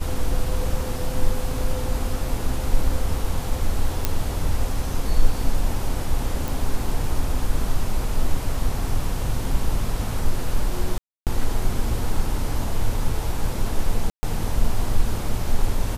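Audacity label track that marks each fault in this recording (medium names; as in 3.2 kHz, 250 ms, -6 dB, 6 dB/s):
4.050000	4.050000	pop -5 dBFS
6.480000	6.480000	pop
10.980000	11.270000	dropout 288 ms
14.100000	14.230000	dropout 130 ms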